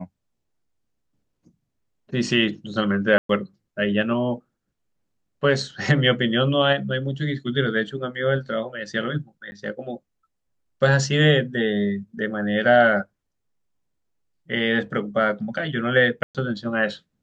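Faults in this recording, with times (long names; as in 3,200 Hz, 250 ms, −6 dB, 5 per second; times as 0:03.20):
0:03.18–0:03.29: drop-out 113 ms
0:09.51–0:09.52: drop-out 10 ms
0:16.23–0:16.35: drop-out 117 ms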